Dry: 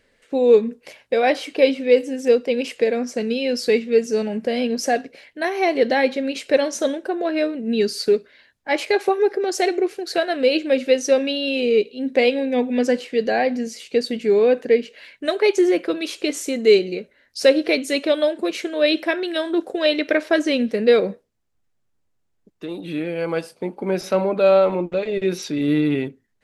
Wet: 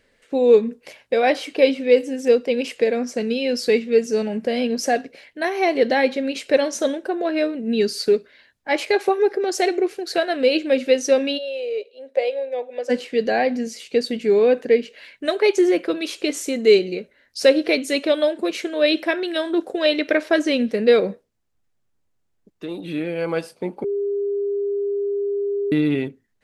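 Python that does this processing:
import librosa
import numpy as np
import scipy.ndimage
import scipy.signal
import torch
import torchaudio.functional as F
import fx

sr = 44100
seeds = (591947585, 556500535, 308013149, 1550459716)

y = fx.ladder_highpass(x, sr, hz=510.0, resonance_pct=65, at=(11.37, 12.89), fade=0.02)
y = fx.edit(y, sr, fx.bleep(start_s=23.84, length_s=1.88, hz=403.0, db=-20.0), tone=tone)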